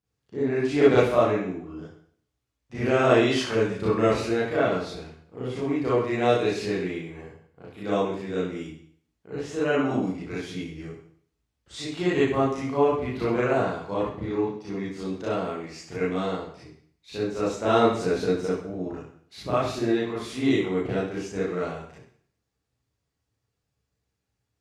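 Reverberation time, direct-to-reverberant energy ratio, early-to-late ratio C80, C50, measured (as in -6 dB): 0.55 s, -9.5 dB, 6.0 dB, -2.5 dB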